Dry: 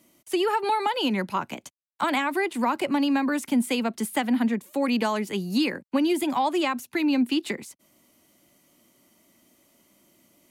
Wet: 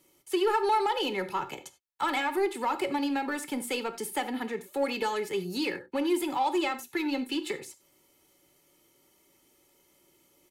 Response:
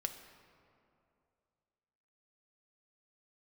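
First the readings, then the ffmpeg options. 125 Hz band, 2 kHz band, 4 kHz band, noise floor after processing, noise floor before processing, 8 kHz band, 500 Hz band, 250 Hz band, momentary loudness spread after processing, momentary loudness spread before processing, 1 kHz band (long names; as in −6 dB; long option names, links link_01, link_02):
−9.5 dB, −4.0 dB, −4.0 dB, −66 dBFS, −66 dBFS, −2.5 dB, −1.5 dB, −8.0 dB, 8 LU, 6 LU, −2.5 dB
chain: -filter_complex "[0:a]aecho=1:1:2.3:0.77,asplit=2[link_01][link_02];[link_02]volume=24.5dB,asoftclip=hard,volume=-24.5dB,volume=-5dB[link_03];[link_01][link_03]amix=inputs=2:normalize=0[link_04];[1:a]atrim=start_sample=2205,afade=type=out:start_time=0.15:duration=0.01,atrim=end_sample=7056[link_05];[link_04][link_05]afir=irnorm=-1:irlink=0,volume=-7.5dB"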